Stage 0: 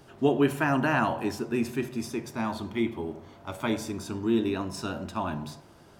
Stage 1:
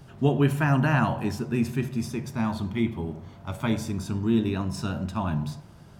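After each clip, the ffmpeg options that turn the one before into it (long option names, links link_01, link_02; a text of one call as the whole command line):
ffmpeg -i in.wav -af "lowshelf=frequency=230:width_type=q:width=1.5:gain=8" out.wav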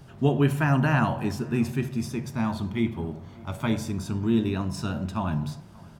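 ffmpeg -i in.wav -filter_complex "[0:a]asplit=2[link_01][link_02];[link_02]adelay=583.1,volume=-23dB,highshelf=frequency=4000:gain=-13.1[link_03];[link_01][link_03]amix=inputs=2:normalize=0" out.wav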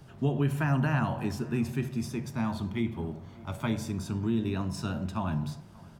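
ffmpeg -i in.wav -filter_complex "[0:a]acrossover=split=170[link_01][link_02];[link_02]acompressor=threshold=-24dB:ratio=6[link_03];[link_01][link_03]amix=inputs=2:normalize=0,volume=-3dB" out.wav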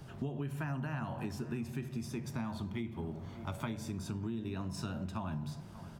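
ffmpeg -i in.wav -af "acompressor=threshold=-37dB:ratio=6,volume=1.5dB" out.wav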